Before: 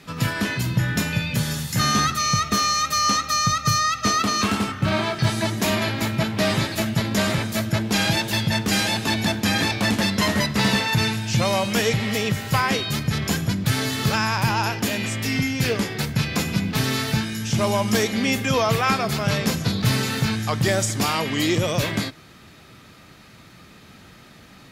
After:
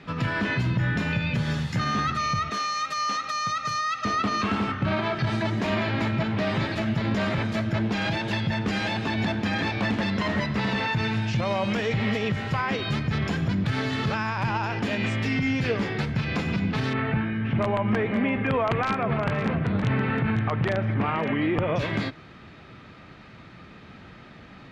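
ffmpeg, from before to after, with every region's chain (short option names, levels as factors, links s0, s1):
-filter_complex "[0:a]asettb=1/sr,asplit=3[s0][s1][s2];[s0]atrim=end=2.504[s3];[s1]atrim=start=2.5:end=4.05,asetpts=PTS-STARTPTS,afade=t=in:d=0.004:c=qsin,afade=t=out:st=1.546:d=0.004:c=qsin,highpass=f=510:p=1,highshelf=f=6200:g=8.5[s4];[s2]atrim=start=4.046[s5];[s3][s4]acrossfade=d=0.004:c1=hsin:c2=qsin[s6];[s6][s5]acrossfade=d=0.004:c1=qsin:c2=hsin,asettb=1/sr,asplit=3[s7][s8][s9];[s7]atrim=end=16.934[s10];[s8]atrim=start=16.93:end=21.76,asetpts=PTS-STARTPTS,afade=t=in:d=0.004:c=qsin,afade=t=out:st=4.826:d=0.004:c=qsin,lowpass=f=2500:w=0.5412,lowpass=f=2500:w=1.3066,aeval=exprs='(mod(3.35*val(0)+1,2)-1)/3.35':c=same,aecho=1:1:517:0.211,atrim=end_sample=213003[s11];[s9]atrim=start=21.756[s12];[s10][s11]acrossfade=d=0.004:c1=hsin:c2=qsin[s13];[s13][s12]acrossfade=d=0.004:c1=qsin:c2=hsin,alimiter=limit=0.141:level=0:latency=1:release=92,lowpass=2800,volume=1.19"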